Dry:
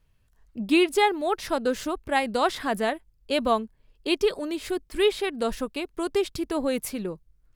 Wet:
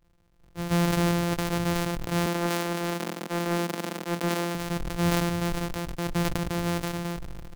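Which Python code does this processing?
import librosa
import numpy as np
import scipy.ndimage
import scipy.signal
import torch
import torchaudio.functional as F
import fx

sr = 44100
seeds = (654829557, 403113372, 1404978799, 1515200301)

y = np.r_[np.sort(x[:len(x) // 256 * 256].reshape(-1, 256), axis=1).ravel(), x[len(x) // 256 * 256:]]
y = fx.steep_highpass(y, sr, hz=190.0, slope=36, at=(2.26, 4.55))
y = 10.0 ** (-16.0 / 20.0) * np.tanh(y / 10.0 ** (-16.0 / 20.0))
y = fx.sustainer(y, sr, db_per_s=21.0)
y = y * 10.0 ** (-2.0 / 20.0)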